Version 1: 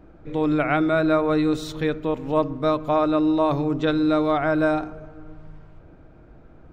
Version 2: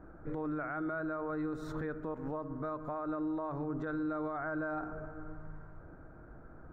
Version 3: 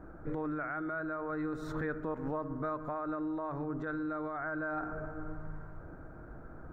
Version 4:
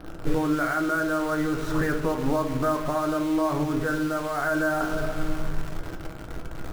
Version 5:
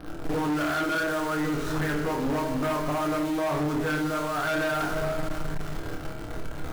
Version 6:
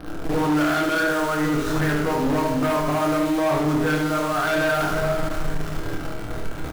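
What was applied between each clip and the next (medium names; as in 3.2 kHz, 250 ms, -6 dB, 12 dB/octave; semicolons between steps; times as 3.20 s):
resonant high shelf 2.1 kHz -11.5 dB, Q 3; compression 4:1, threshold -27 dBFS, peak gain reduction 12 dB; peak limiter -25 dBFS, peak gain reduction 8 dB; trim -4.5 dB
dynamic bell 1.8 kHz, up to +5 dB, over -52 dBFS, Q 1.4; gain riding within 4 dB 0.5 s
in parallel at -3.5 dB: bit crusher 7-bit; on the sum: simulated room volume 34 m³, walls mixed, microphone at 0.32 m; trim +5.5 dB
on a send: flutter echo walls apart 4.6 m, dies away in 0.35 s; on the sum: hard clipper -24 dBFS, distortion -9 dB
delay 73 ms -6.5 dB; trim +4.5 dB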